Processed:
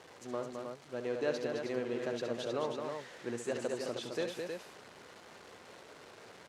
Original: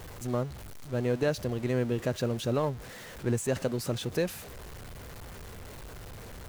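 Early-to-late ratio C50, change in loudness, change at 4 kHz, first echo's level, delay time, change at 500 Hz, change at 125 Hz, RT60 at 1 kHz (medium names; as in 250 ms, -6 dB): no reverb, -6.5 dB, -4.5 dB, -8.5 dB, 68 ms, -4.5 dB, -18.5 dB, no reverb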